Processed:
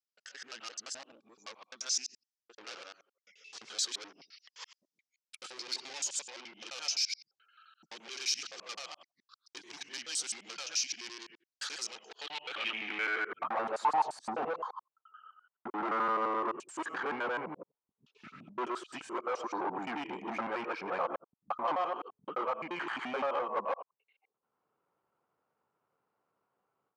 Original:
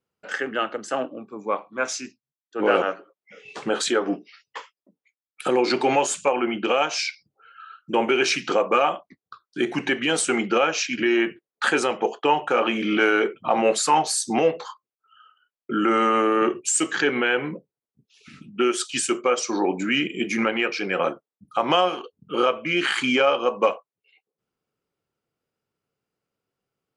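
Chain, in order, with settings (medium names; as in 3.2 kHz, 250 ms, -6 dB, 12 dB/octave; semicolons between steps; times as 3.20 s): time reversed locally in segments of 86 ms; bass shelf 290 Hz +11.5 dB; level rider gain up to 15 dB; saturation -16 dBFS, distortion -7 dB; band-pass sweep 5.4 kHz -> 980 Hz, 11.97–13.76 s; trim -4.5 dB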